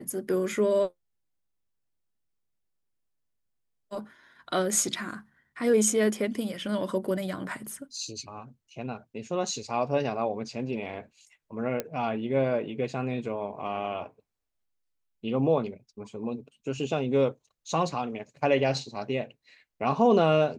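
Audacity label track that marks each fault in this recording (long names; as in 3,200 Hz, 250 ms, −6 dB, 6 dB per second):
11.800000	11.800000	click −14 dBFS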